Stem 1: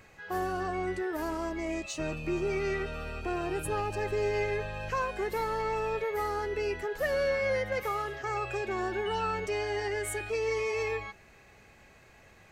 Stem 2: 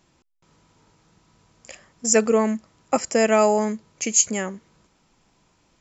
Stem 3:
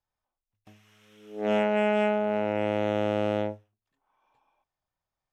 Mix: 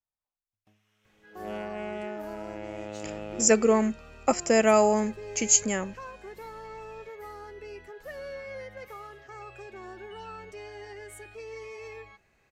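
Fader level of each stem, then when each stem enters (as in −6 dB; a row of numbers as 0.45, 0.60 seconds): −11.0, −2.5, −12.0 decibels; 1.05, 1.35, 0.00 seconds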